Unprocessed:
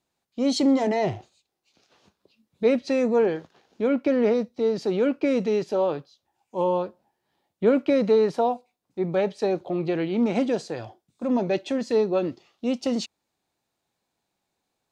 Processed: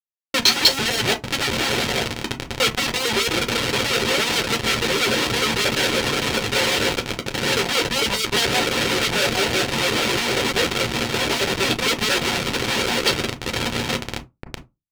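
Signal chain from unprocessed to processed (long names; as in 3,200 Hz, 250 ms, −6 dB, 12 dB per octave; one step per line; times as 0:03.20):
reversed piece by piece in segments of 113 ms
high-shelf EQ 2,200 Hz +7.5 dB
feedback delay with all-pass diffusion 925 ms, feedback 48%, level −4 dB
gate on every frequency bin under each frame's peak −15 dB strong
comparator with hysteresis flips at −25.5 dBFS
harmonic and percussive parts rebalanced harmonic −18 dB
noise gate −39 dBFS, range −26 dB
convolution reverb RT60 0.20 s, pre-delay 6 ms, DRR 2.5 dB
soft clipping −20.5 dBFS, distortion −14 dB
meter weighting curve D
level +6.5 dB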